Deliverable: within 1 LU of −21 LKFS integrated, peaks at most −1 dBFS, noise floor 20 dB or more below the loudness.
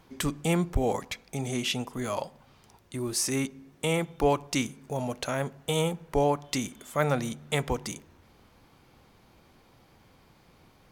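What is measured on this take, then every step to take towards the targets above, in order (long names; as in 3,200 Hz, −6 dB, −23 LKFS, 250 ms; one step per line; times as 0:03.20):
integrated loudness −30.0 LKFS; sample peak −11.0 dBFS; target loudness −21.0 LKFS
→ level +9 dB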